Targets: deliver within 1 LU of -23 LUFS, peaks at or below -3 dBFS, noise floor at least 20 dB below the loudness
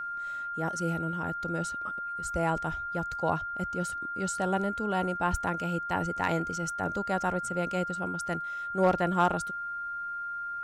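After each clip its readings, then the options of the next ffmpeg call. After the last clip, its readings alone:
steady tone 1400 Hz; tone level -33 dBFS; loudness -31.0 LUFS; peak -14.0 dBFS; loudness target -23.0 LUFS
-> -af "bandreject=f=1.4k:w=30"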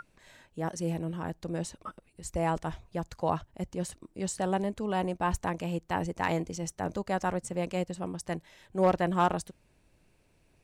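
steady tone none; loudness -32.5 LUFS; peak -14.5 dBFS; loudness target -23.0 LUFS
-> -af "volume=9.5dB"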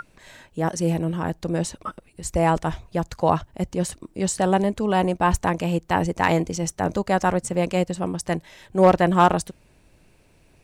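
loudness -23.0 LUFS; peak -5.0 dBFS; noise floor -58 dBFS

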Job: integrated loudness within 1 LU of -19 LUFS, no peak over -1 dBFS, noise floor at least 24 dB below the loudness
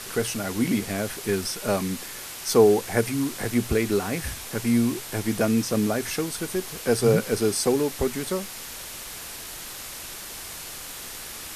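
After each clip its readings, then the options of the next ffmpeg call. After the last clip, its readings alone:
noise floor -38 dBFS; noise floor target -50 dBFS; loudness -26.0 LUFS; peak -5.0 dBFS; loudness target -19.0 LUFS
-> -af "afftdn=nr=12:nf=-38"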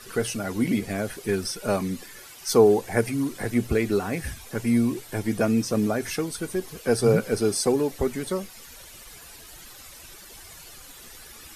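noise floor -46 dBFS; noise floor target -49 dBFS
-> -af "afftdn=nr=6:nf=-46"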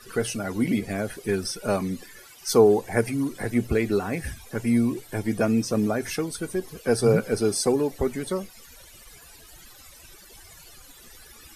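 noise floor -49 dBFS; loudness -25.0 LUFS; peak -5.0 dBFS; loudness target -19.0 LUFS
-> -af "volume=6dB,alimiter=limit=-1dB:level=0:latency=1"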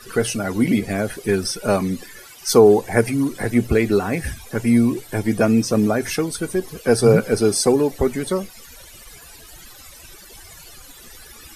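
loudness -19.0 LUFS; peak -1.0 dBFS; noise floor -43 dBFS

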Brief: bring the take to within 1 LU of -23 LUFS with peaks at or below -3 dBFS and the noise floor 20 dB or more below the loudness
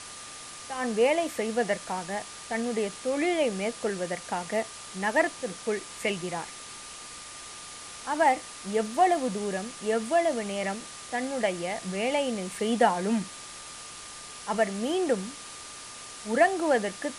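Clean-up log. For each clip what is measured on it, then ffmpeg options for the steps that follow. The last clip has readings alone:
steady tone 1200 Hz; tone level -50 dBFS; noise floor -43 dBFS; noise floor target -49 dBFS; loudness -28.5 LUFS; peak -9.5 dBFS; loudness target -23.0 LUFS
-> -af "bandreject=f=1.2k:w=30"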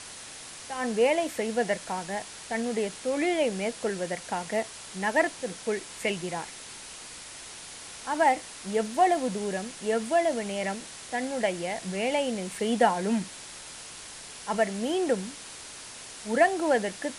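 steady tone none; noise floor -44 dBFS; noise floor target -49 dBFS
-> -af "afftdn=nr=6:nf=-44"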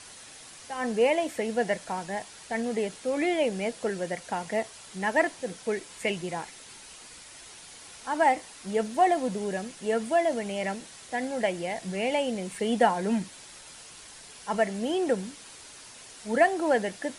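noise floor -48 dBFS; noise floor target -49 dBFS
-> -af "afftdn=nr=6:nf=-48"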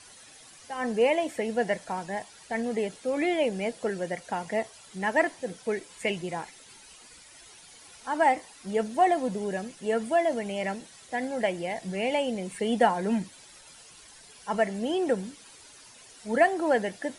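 noise floor -52 dBFS; loudness -28.5 LUFS; peak -9.5 dBFS; loudness target -23.0 LUFS
-> -af "volume=5.5dB"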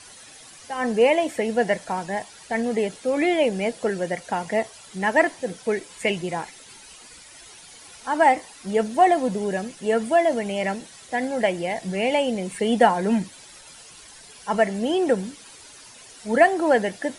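loudness -23.0 LUFS; peak -4.0 dBFS; noise floor -46 dBFS

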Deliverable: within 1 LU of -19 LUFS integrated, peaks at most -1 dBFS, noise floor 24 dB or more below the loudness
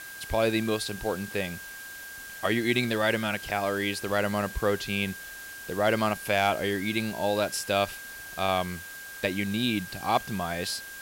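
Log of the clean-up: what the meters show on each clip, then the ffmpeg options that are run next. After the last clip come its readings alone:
steady tone 1600 Hz; tone level -41 dBFS; noise floor -42 dBFS; noise floor target -52 dBFS; loudness -28.0 LUFS; peak -12.0 dBFS; loudness target -19.0 LUFS
-> -af "bandreject=f=1.6k:w=30"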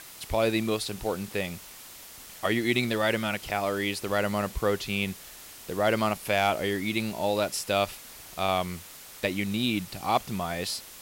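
steady tone none; noise floor -47 dBFS; noise floor target -53 dBFS
-> -af "afftdn=nr=6:nf=-47"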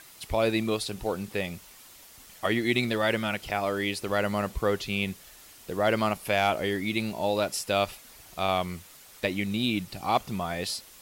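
noise floor -51 dBFS; noise floor target -53 dBFS
-> -af "afftdn=nr=6:nf=-51"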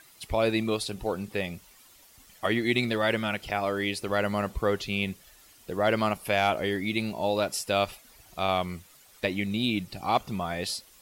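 noise floor -56 dBFS; loudness -28.5 LUFS; peak -12.5 dBFS; loudness target -19.0 LUFS
-> -af "volume=9.5dB"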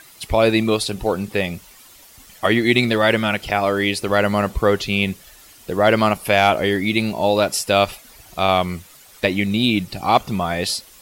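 loudness -19.0 LUFS; peak -3.0 dBFS; noise floor -47 dBFS

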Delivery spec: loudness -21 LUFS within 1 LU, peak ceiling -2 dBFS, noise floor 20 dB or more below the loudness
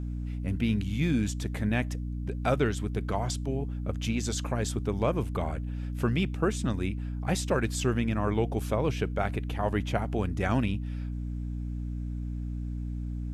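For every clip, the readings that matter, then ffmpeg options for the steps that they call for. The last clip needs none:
hum 60 Hz; harmonics up to 300 Hz; hum level -31 dBFS; loudness -30.5 LUFS; peak -13.0 dBFS; loudness target -21.0 LUFS
-> -af "bandreject=f=60:t=h:w=6,bandreject=f=120:t=h:w=6,bandreject=f=180:t=h:w=6,bandreject=f=240:t=h:w=6,bandreject=f=300:t=h:w=6"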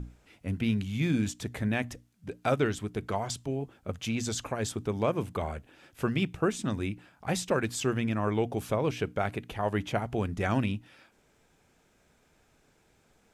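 hum none; loudness -31.5 LUFS; peak -14.0 dBFS; loudness target -21.0 LUFS
-> -af "volume=10.5dB"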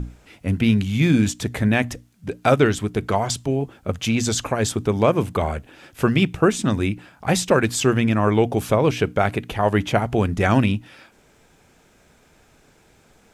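loudness -21.0 LUFS; peak -3.5 dBFS; noise floor -56 dBFS

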